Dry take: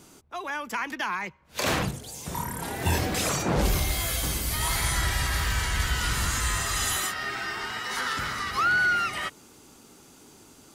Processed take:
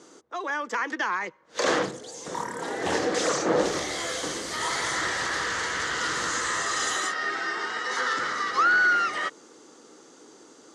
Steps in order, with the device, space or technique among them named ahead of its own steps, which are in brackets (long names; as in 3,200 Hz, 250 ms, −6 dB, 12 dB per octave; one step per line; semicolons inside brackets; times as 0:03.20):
full-range speaker at full volume (highs frequency-modulated by the lows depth 0.42 ms; loudspeaker in its box 270–7,700 Hz, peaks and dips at 320 Hz +6 dB, 490 Hz +10 dB, 1,200 Hz +4 dB, 1,800 Hz +5 dB, 2,500 Hz −7 dB, 6,400 Hz +3 dB)